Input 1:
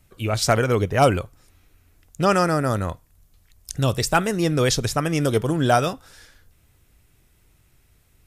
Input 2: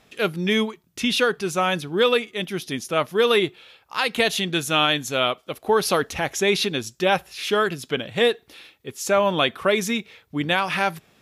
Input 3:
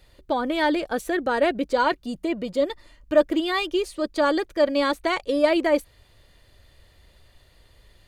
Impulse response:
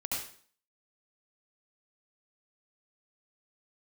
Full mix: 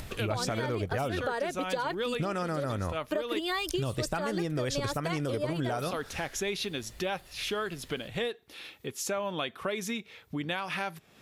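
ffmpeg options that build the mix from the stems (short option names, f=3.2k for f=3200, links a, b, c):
-filter_complex "[0:a]highshelf=f=5.5k:g=-6.5,volume=-0.5dB,asplit=2[a][b];[1:a]volume=-10dB,asplit=3[c][d][e];[c]atrim=end=3.39,asetpts=PTS-STARTPTS,afade=t=out:st=3.386:d=0.004:c=hsin[f];[d]atrim=start=3.39:end=5.29,asetpts=PTS-STARTPTS,volume=0[g];[e]atrim=start=5.29,asetpts=PTS-STARTPTS,afade=t=in:d=0.004:c=hsin[h];[f][g][h]concat=n=3:v=0:a=1[i];[2:a]highpass=350,highshelf=f=9.6k:g=11,acompressor=threshold=-21dB:ratio=6,volume=1dB[j];[b]apad=whole_len=356273[k];[j][k]sidechaincompress=threshold=-23dB:ratio=8:attack=16:release=103[l];[a][i]amix=inputs=2:normalize=0,acompressor=mode=upward:threshold=-28dB:ratio=2.5,alimiter=limit=-13.5dB:level=0:latency=1:release=203,volume=0dB[m];[l][m]amix=inputs=2:normalize=0,acompressor=threshold=-28dB:ratio=6"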